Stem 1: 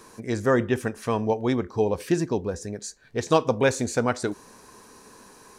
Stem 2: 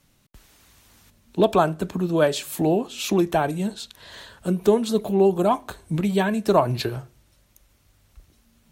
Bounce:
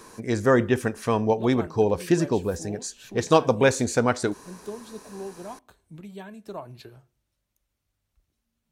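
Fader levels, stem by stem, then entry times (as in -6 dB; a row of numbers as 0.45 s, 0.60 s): +2.0 dB, -19.0 dB; 0.00 s, 0.00 s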